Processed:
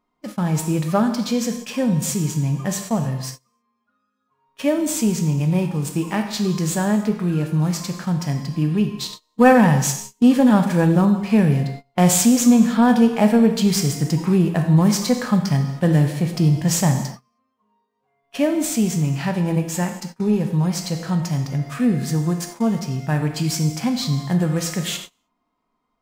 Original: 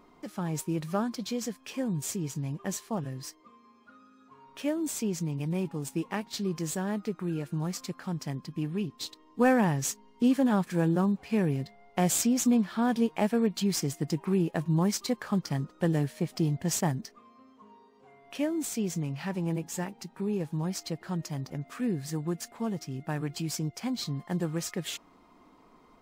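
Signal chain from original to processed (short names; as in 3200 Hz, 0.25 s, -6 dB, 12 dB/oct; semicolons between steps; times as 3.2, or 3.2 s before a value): bell 350 Hz -7 dB 0.59 oct; non-linear reverb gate 0.34 s falling, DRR 7.5 dB; gate -44 dBFS, range -27 dB; in parallel at -7.5 dB: soft clip -29.5 dBFS, distortion -9 dB; on the sum: harmonic-percussive split harmonic +6 dB; gain +5 dB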